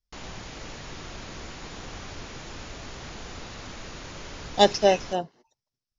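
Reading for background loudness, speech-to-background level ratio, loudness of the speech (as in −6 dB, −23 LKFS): −40.0 LKFS, 17.5 dB, −22.5 LKFS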